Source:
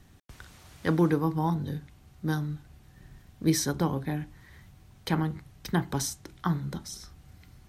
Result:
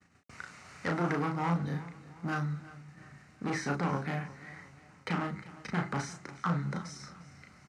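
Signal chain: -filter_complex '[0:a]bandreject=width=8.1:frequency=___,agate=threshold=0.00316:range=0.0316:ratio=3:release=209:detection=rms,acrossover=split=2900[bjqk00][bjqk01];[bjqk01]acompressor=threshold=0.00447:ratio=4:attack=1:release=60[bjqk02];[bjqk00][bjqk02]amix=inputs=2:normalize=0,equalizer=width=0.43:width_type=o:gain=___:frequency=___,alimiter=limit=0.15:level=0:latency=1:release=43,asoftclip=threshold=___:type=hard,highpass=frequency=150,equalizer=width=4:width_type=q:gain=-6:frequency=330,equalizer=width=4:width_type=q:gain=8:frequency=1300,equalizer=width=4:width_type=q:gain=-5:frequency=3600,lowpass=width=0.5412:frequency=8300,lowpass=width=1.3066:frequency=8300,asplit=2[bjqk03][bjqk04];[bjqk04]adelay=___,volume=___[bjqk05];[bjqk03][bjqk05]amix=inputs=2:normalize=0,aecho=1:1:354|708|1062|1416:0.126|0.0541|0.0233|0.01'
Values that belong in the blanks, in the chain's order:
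3300, 7.5, 2100, 0.0473, 35, 0.631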